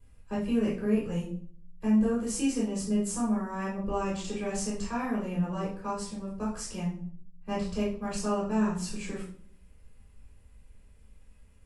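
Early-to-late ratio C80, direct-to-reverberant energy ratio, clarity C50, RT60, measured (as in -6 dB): 10.5 dB, -7.0 dB, 4.5 dB, 0.50 s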